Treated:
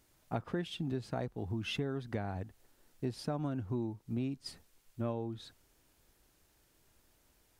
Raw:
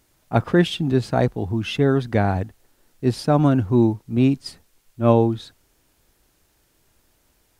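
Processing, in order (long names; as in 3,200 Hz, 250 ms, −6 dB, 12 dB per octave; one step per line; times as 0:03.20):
downward compressor 6 to 1, threshold −27 dBFS, peak gain reduction 16.5 dB
level −6.5 dB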